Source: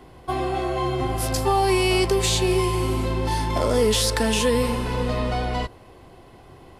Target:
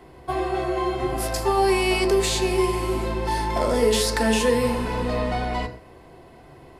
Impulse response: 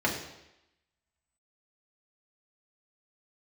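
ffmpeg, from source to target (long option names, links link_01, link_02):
-filter_complex "[0:a]asplit=2[link_01][link_02];[link_02]equalizer=frequency=3300:width=7.3:gain=-14[link_03];[1:a]atrim=start_sample=2205,afade=type=out:start_time=0.2:duration=0.01,atrim=end_sample=9261[link_04];[link_03][link_04]afir=irnorm=-1:irlink=0,volume=-12.5dB[link_05];[link_01][link_05]amix=inputs=2:normalize=0,volume=-3.5dB"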